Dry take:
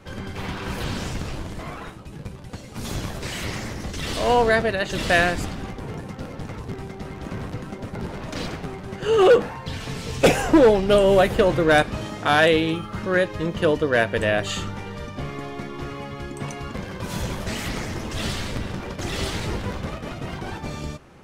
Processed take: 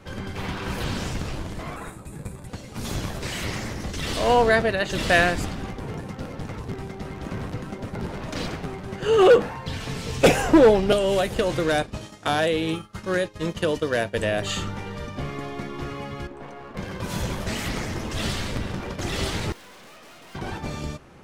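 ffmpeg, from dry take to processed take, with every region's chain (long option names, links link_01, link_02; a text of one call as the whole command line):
ffmpeg -i in.wav -filter_complex "[0:a]asettb=1/sr,asplit=3[link_01][link_02][link_03];[link_01]atrim=end=1.764[link_04];[link_02]atrim=start=1.76:end=2.47,asetpts=PTS-STARTPTS,afade=type=in:duration=0.004:curve=qsin,afade=type=out:start_time=0.706:duration=0.004:curve=qsin,highshelf=frequency=6700:width_type=q:width=3:gain=6,bandreject=frequency=3000:width=5.6[link_05];[link_03]atrim=start=2.466[link_06];[link_04][link_05]acrossfade=duration=0.004:curve1=hsin:curve2=qsin[link_07];[link_07][link_06]acrossfade=duration=0.004:curve1=qsin:curve2=hsin,asettb=1/sr,asplit=3[link_08][link_09][link_10];[link_08]atrim=end=10.924[link_11];[link_09]atrim=start=10.92:end=14.42,asetpts=PTS-STARTPTS,afade=type=in:duration=0.004:curve=qsin,afade=type=out:start_time=3.496:duration=0.004:curve=qsin,agate=range=-33dB:threshold=-24dB:ratio=3:release=100:detection=peak,acrossover=split=920|2200|5600[link_12][link_13][link_14][link_15];[link_12]acompressor=threshold=-22dB:ratio=3[link_16];[link_13]acompressor=threshold=-37dB:ratio=3[link_17];[link_14]acompressor=threshold=-39dB:ratio=3[link_18];[link_15]acompressor=threshold=-54dB:ratio=3[link_19];[link_16][link_17][link_18][link_19]amix=inputs=4:normalize=0,equalizer=frequency=8600:width=0.43:gain=10[link_20];[link_10]atrim=start=14.416[link_21];[link_11][link_20]acrossfade=duration=0.004:curve1=hsin:curve2=qsin[link_22];[link_22][link_21]acrossfade=duration=0.004:curve1=qsin:curve2=hsin,asettb=1/sr,asplit=3[link_23][link_24][link_25];[link_23]atrim=end=16.274[link_26];[link_24]atrim=start=16.27:end=16.77,asetpts=PTS-STARTPTS,afade=type=in:duration=0.004:curve=qsin,afade=type=out:start_time=0.496:duration=0.004:curve=qsin,bandpass=frequency=600:width_type=q:width=0.79,aeval=exprs='clip(val(0),-1,0.00708)':channel_layout=same[link_27];[link_25]atrim=start=16.766[link_28];[link_26][link_27]acrossfade=duration=0.004:curve1=hsin:curve2=qsin[link_29];[link_29][link_28]acrossfade=duration=0.004:curve1=qsin:curve2=hsin,asettb=1/sr,asplit=3[link_30][link_31][link_32];[link_30]atrim=end=19.524[link_33];[link_31]atrim=start=19.52:end=20.35,asetpts=PTS-STARTPTS,afade=type=in:duration=0.004:curve=qsin,afade=type=out:start_time=0.826:duration=0.004:curve=qsin,highpass=220,tiltshelf=frequency=680:gain=-5,aeval=exprs='(tanh(200*val(0)+0.45)-tanh(0.45))/200':channel_layout=same[link_34];[link_32]atrim=start=20.346[link_35];[link_33][link_34]acrossfade=duration=0.004:curve1=hsin:curve2=qsin[link_36];[link_36][link_35]acrossfade=duration=0.004:curve1=qsin:curve2=hsin" out.wav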